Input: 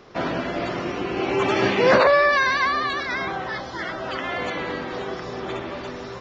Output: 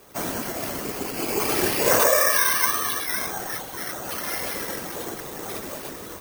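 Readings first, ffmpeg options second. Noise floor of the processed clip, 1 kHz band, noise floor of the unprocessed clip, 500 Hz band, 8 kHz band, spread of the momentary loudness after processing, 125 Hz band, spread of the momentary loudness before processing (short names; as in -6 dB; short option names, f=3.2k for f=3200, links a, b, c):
-38 dBFS, -5.0 dB, -35 dBFS, -5.0 dB, n/a, 16 LU, -5.0 dB, 15 LU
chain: -af "afftfilt=real='hypot(re,im)*cos(2*PI*random(0))':imag='hypot(re,im)*sin(2*PI*random(1))':win_size=512:overlap=0.75,acrusher=samples=6:mix=1:aa=0.000001,aemphasis=mode=production:type=50kf,volume=1dB"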